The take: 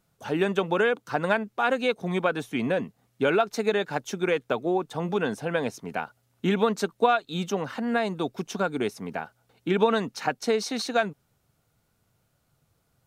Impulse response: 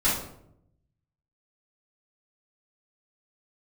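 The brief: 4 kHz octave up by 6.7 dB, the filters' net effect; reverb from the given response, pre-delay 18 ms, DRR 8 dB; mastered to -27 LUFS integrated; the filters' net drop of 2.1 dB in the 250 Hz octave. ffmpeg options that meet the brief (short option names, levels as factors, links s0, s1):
-filter_complex "[0:a]equalizer=f=250:t=o:g=-3,equalizer=f=4000:t=o:g=8,asplit=2[s0][s1];[1:a]atrim=start_sample=2205,adelay=18[s2];[s1][s2]afir=irnorm=-1:irlink=0,volume=0.0891[s3];[s0][s3]amix=inputs=2:normalize=0,volume=0.891"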